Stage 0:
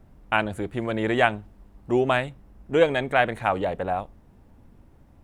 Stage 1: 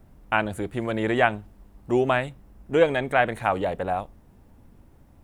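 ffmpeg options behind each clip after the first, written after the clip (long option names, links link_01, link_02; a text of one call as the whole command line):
ffmpeg -i in.wav -filter_complex "[0:a]acrossover=split=2900[link_01][link_02];[link_02]acompressor=threshold=-40dB:ratio=4:attack=1:release=60[link_03];[link_01][link_03]amix=inputs=2:normalize=0,highshelf=frequency=7700:gain=7.5" out.wav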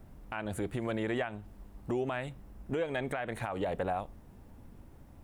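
ffmpeg -i in.wav -af "acompressor=threshold=-27dB:ratio=6,alimiter=limit=-23.5dB:level=0:latency=1:release=106" out.wav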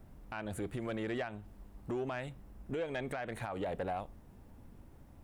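ffmpeg -i in.wav -af "asoftclip=type=tanh:threshold=-26dB,volume=-2.5dB" out.wav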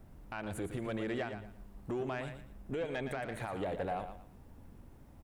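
ffmpeg -i in.wav -af "aecho=1:1:115|230|345:0.355|0.0958|0.0259" out.wav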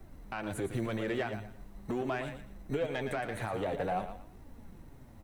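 ffmpeg -i in.wav -filter_complex "[0:a]flanger=delay=2.5:depth=8.6:regen=50:speed=0.46:shape=triangular,acrossover=split=160|830[link_01][link_02][link_03];[link_01]acrusher=samples=22:mix=1:aa=0.000001[link_04];[link_04][link_02][link_03]amix=inputs=3:normalize=0,volume=7.5dB" out.wav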